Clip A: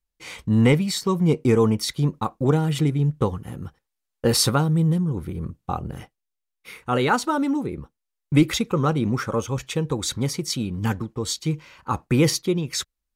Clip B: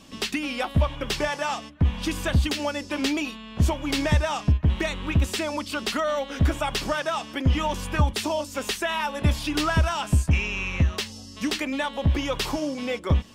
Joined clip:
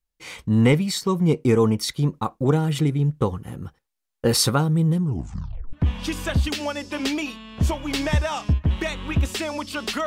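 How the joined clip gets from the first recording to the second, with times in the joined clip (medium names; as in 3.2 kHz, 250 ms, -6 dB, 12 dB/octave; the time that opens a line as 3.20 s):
clip A
5.03 s: tape stop 0.70 s
5.73 s: go over to clip B from 1.72 s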